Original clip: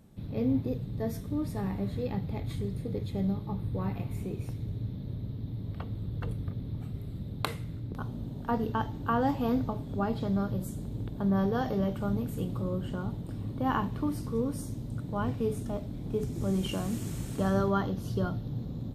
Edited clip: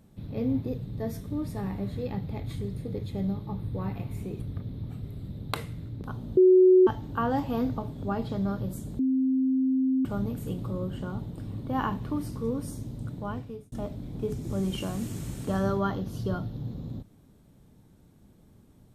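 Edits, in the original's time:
4.4–6.31 cut
8.28–8.78 bleep 370 Hz -13.5 dBFS
10.9–11.96 bleep 262 Hz -21.5 dBFS
15.03–15.63 fade out

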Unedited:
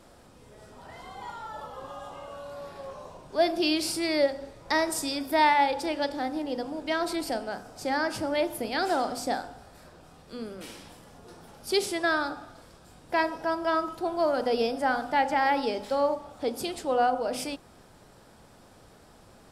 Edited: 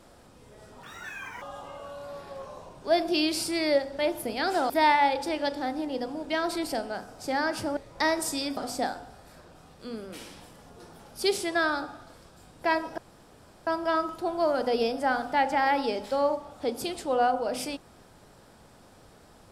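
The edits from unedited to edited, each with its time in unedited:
0.83–1.9 speed 182%
4.47–5.27 swap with 8.34–9.05
13.46 insert room tone 0.69 s

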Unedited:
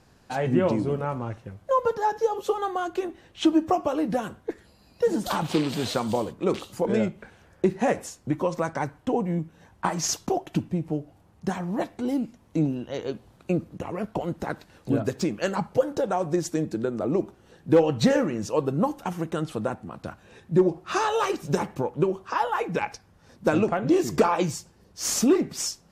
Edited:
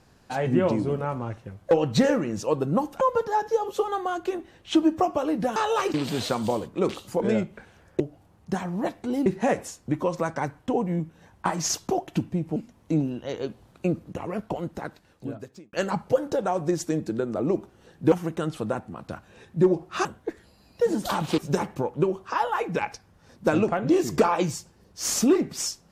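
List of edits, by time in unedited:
4.26–5.59 swap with 21–21.38
10.95–12.21 move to 7.65
13.99–15.38 fade out
17.77–19.07 move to 1.71

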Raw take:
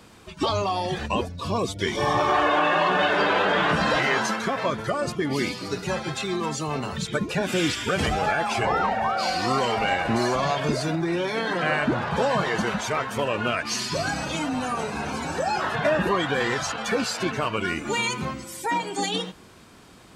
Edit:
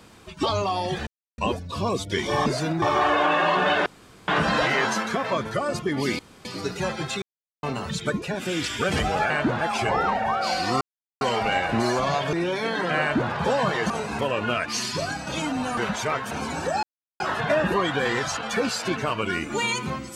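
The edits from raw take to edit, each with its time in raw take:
1.07 insert silence 0.31 s
3.19–3.61 room tone
5.52 insert room tone 0.26 s
6.29–6.7 mute
7.29–7.71 gain -4 dB
9.57 insert silence 0.40 s
10.69–11.05 move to 2.15
11.73–12.04 copy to 8.37
12.62–13.16 swap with 14.74–15.03
13.9–14.24 fade out, to -7 dB
15.55 insert silence 0.37 s

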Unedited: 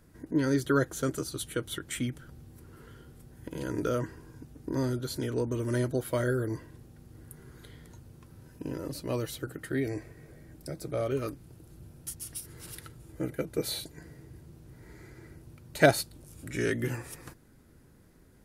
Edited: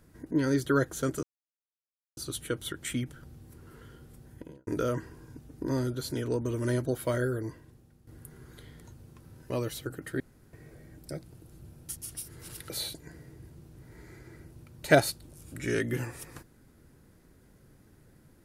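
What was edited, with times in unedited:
1.23 insert silence 0.94 s
3.32–3.73 studio fade out
6.16–7.13 fade out, to -10.5 dB
8.56–9.07 cut
9.77–10.1 room tone
10.8–11.41 cut
12.88–13.61 cut

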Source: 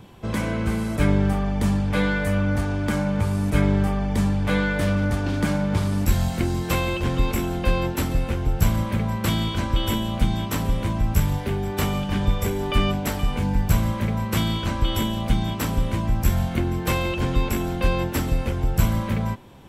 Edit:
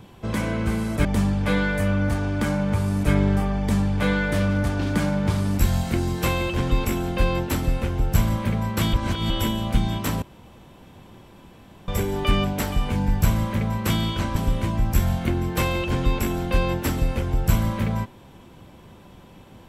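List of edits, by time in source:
1.05–1.52 cut
9.4–9.77 reverse
10.69–12.35 room tone
14.83–15.66 cut

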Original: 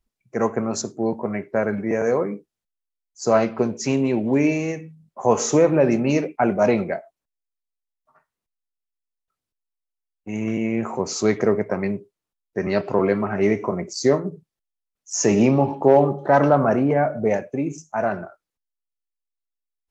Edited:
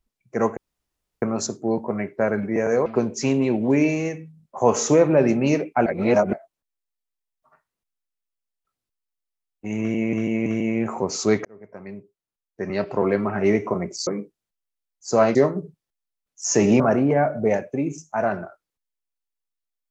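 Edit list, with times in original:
0.57 insert room tone 0.65 s
2.21–3.49 move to 14.04
6.49–6.96 reverse
10.43–10.76 loop, 3 plays
11.42–13.38 fade in
15.49–16.6 cut

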